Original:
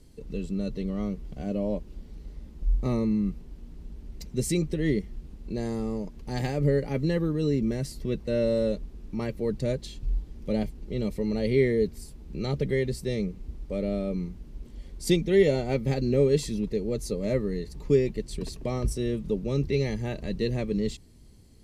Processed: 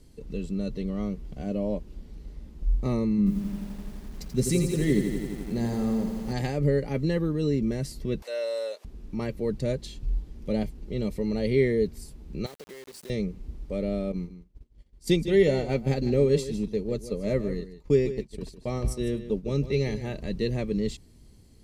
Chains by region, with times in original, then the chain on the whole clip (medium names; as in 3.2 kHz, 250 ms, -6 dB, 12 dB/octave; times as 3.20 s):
3.18–6.33 s: peaking EQ 200 Hz +9.5 dB 0.27 oct + comb 7.5 ms, depth 38% + bit-crushed delay 85 ms, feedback 80%, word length 8-bit, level -7 dB
8.22–8.85 s: high-pass 590 Hz 24 dB/octave + treble shelf 6.2 kHz +5.5 dB + upward compressor, threshold -39 dBFS
12.46–13.10 s: high-pass 370 Hz + compression 20:1, threshold -40 dBFS + word length cut 8-bit, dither none
14.12–20.14 s: expander -29 dBFS + delay 154 ms -12.5 dB
whole clip: none